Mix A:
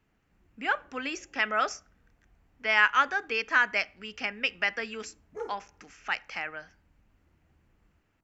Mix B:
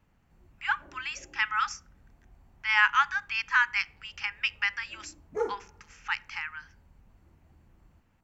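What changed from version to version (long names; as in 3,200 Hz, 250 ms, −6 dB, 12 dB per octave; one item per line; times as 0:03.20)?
speech: add linear-phase brick-wall high-pass 810 Hz
background +7.5 dB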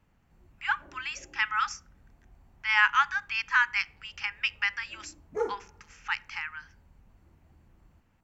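nothing changed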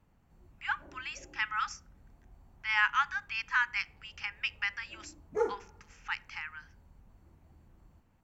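speech −5.0 dB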